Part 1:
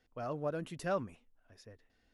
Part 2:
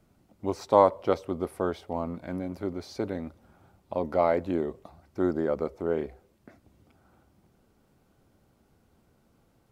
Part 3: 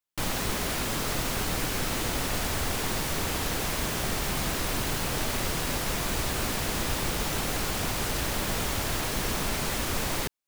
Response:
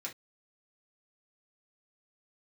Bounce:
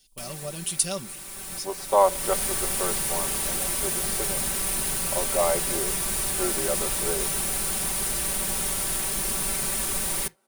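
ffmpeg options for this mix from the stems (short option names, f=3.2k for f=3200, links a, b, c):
-filter_complex "[0:a]lowshelf=f=200:g=10,aexciter=amount=13.1:drive=6.4:freq=2.7k,volume=-4.5dB,asplit=2[a][b];[1:a]highpass=500,adelay=1200,volume=0dB[c];[2:a]highshelf=f=6.6k:g=9.5,volume=-6dB,asplit=2[d][e];[e]volume=-13.5dB[f];[b]apad=whole_len=462162[g];[d][g]sidechaincompress=threshold=-55dB:ratio=8:attack=38:release=584[h];[3:a]atrim=start_sample=2205[i];[f][i]afir=irnorm=-1:irlink=0[j];[a][c][h][j]amix=inputs=4:normalize=0,equalizer=f=9.5k:t=o:w=0.25:g=13,aecho=1:1:5.2:0.65"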